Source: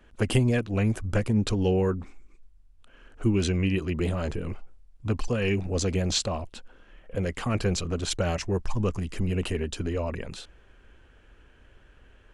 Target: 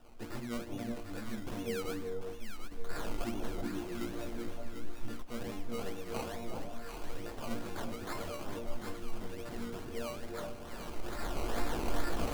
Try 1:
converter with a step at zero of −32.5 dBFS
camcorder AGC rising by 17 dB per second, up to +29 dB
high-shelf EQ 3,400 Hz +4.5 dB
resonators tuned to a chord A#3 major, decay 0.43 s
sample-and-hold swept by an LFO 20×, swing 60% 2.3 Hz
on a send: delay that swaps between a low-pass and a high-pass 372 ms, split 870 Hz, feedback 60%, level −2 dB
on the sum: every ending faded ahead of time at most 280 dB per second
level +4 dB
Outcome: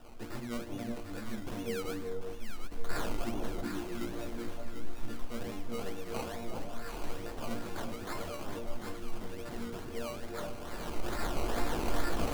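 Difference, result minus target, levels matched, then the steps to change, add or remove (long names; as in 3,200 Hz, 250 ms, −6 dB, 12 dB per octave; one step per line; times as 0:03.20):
converter with a step at zero: distortion +5 dB
change: converter with a step at zero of −38.5 dBFS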